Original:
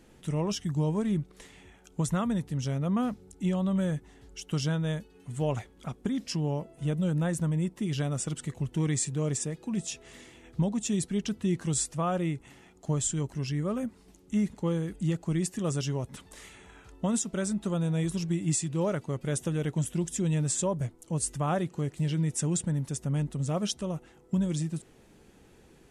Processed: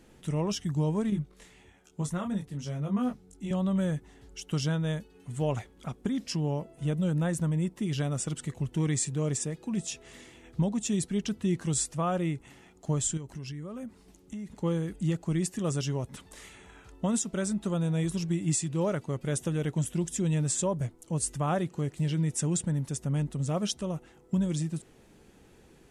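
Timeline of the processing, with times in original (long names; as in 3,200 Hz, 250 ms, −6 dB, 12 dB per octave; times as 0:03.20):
0:01.10–0:03.51: micro pitch shift up and down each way 14 cents
0:13.17–0:14.63: downward compressor 10 to 1, threshold −35 dBFS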